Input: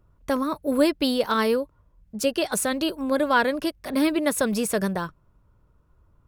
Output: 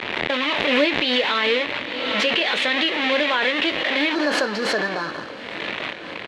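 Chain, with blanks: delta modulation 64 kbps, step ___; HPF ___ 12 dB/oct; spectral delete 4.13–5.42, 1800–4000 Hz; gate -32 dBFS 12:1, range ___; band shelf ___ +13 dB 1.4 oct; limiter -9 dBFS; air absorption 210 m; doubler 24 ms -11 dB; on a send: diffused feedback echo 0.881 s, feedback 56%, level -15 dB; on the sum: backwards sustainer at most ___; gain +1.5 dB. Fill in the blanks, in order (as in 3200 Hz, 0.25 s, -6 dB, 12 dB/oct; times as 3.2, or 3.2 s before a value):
-21 dBFS, 340 Hz, -16 dB, 2700 Hz, 30 dB/s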